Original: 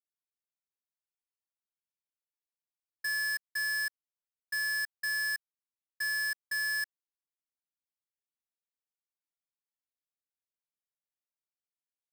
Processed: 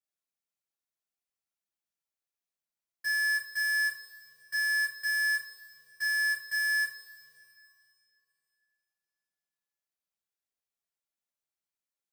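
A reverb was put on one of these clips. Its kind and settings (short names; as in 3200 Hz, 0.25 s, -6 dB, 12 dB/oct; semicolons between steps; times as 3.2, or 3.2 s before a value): two-slope reverb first 0.32 s, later 2.8 s, from -20 dB, DRR -4.5 dB; gain -5 dB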